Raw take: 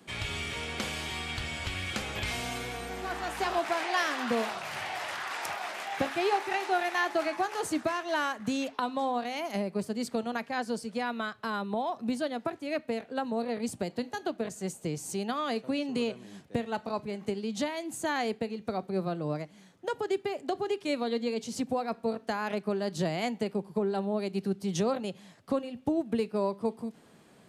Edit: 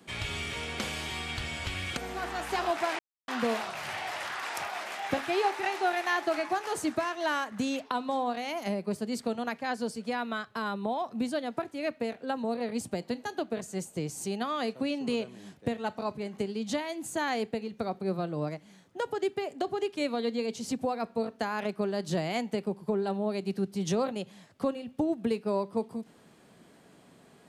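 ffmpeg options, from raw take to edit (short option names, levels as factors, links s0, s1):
-filter_complex "[0:a]asplit=4[s0][s1][s2][s3];[s0]atrim=end=1.972[s4];[s1]atrim=start=2.848:end=3.87,asetpts=PTS-STARTPTS,afade=t=out:st=1.018:d=0.004:c=hsin[s5];[s2]atrim=start=3.87:end=4.16,asetpts=PTS-STARTPTS,volume=0[s6];[s3]atrim=start=4.16,asetpts=PTS-STARTPTS,afade=t=in:d=0.004:c=hsin[s7];[s5][s6][s7]concat=n=3:v=0:a=1[s8];[s4][s8]acrossfade=d=0.004:c1=hsin:c2=hsin"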